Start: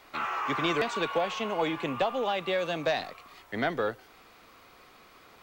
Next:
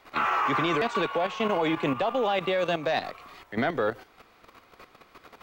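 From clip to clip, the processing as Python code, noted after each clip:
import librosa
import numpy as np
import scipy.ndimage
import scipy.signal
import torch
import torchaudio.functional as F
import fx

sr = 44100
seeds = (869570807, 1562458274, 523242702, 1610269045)

y = fx.level_steps(x, sr, step_db=11)
y = fx.high_shelf(y, sr, hz=3800.0, db=-6.0)
y = F.gain(torch.from_numpy(y), 8.5).numpy()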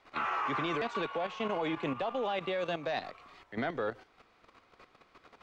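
y = scipy.signal.sosfilt(scipy.signal.butter(2, 7000.0, 'lowpass', fs=sr, output='sos'), x)
y = F.gain(torch.from_numpy(y), -7.5).numpy()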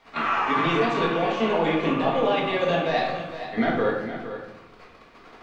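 y = x + 10.0 ** (-11.0 / 20.0) * np.pad(x, (int(465 * sr / 1000.0), 0))[:len(x)]
y = fx.room_shoebox(y, sr, seeds[0], volume_m3=280.0, walls='mixed', distance_m=1.7)
y = F.gain(torch.from_numpy(y), 5.0).numpy()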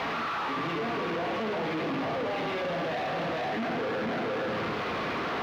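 y = np.sign(x) * np.sqrt(np.mean(np.square(x)))
y = scipy.signal.sosfilt(scipy.signal.butter(2, 110.0, 'highpass', fs=sr, output='sos'), y)
y = fx.air_absorb(y, sr, metres=290.0)
y = F.gain(torch.from_numpy(y), -4.0).numpy()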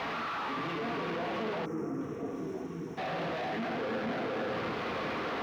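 y = fx.spec_erase(x, sr, start_s=1.66, length_s=1.32, low_hz=480.0, high_hz=5300.0)
y = fx.echo_stepped(y, sr, ms=335, hz=230.0, octaves=0.7, feedback_pct=70, wet_db=-5)
y = F.gain(torch.from_numpy(y), -4.0).numpy()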